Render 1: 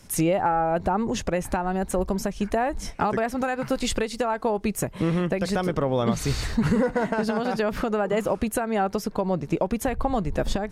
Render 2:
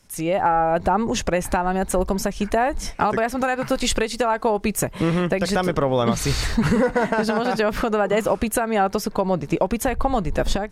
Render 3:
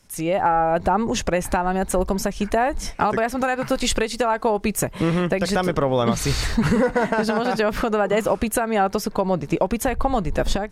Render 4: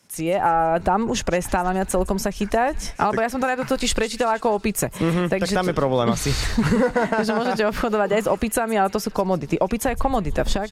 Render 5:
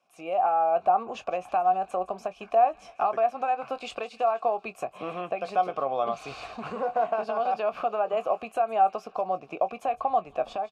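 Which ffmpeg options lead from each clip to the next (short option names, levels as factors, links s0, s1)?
-af "equalizer=f=160:w=0.32:g=-4,dynaudnorm=f=180:g=3:m=5.01,volume=0.501"
-af anull
-filter_complex "[0:a]acrossover=split=100|1700[s0][s1][s2];[s0]aeval=exprs='sgn(val(0))*max(abs(val(0))-0.00178,0)':c=same[s3];[s2]aecho=1:1:162|324|486|648|810:0.158|0.0856|0.0462|0.025|0.0135[s4];[s3][s1][s4]amix=inputs=3:normalize=0"
-filter_complex "[0:a]asplit=3[s0][s1][s2];[s0]bandpass=f=730:t=q:w=8,volume=1[s3];[s1]bandpass=f=1090:t=q:w=8,volume=0.501[s4];[s2]bandpass=f=2440:t=q:w=8,volume=0.355[s5];[s3][s4][s5]amix=inputs=3:normalize=0,asplit=2[s6][s7];[s7]adelay=22,volume=0.224[s8];[s6][s8]amix=inputs=2:normalize=0,volume=1.41"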